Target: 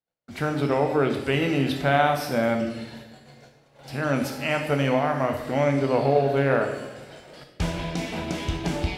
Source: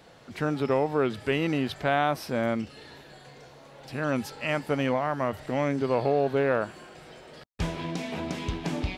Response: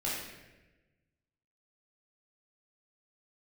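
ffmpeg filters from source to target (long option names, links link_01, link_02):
-filter_complex "[0:a]agate=range=-45dB:threshold=-47dB:ratio=16:detection=peak,asplit=2[link_01][link_02];[1:a]atrim=start_sample=2205,highshelf=frequency=6400:gain=10.5[link_03];[link_02][link_03]afir=irnorm=-1:irlink=0,volume=-7dB[link_04];[link_01][link_04]amix=inputs=2:normalize=0"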